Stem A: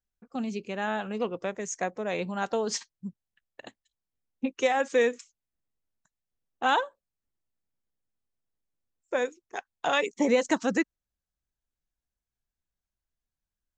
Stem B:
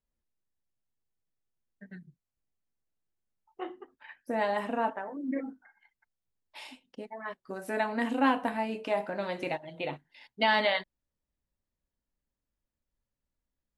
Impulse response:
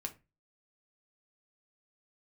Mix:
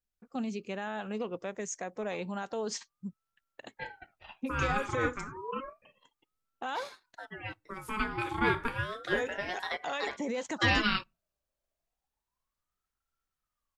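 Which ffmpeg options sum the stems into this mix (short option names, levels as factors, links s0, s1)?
-filter_complex "[0:a]alimiter=limit=0.0668:level=0:latency=1:release=106,volume=0.75[s0];[1:a]lowshelf=f=290:g=-8,aeval=exprs='val(0)*sin(2*PI*970*n/s+970*0.4/0.31*sin(2*PI*0.31*n/s))':c=same,adelay=200,volume=1.19,asplit=2[s1][s2];[s2]volume=0.0944[s3];[2:a]atrim=start_sample=2205[s4];[s3][s4]afir=irnorm=-1:irlink=0[s5];[s0][s1][s5]amix=inputs=3:normalize=0"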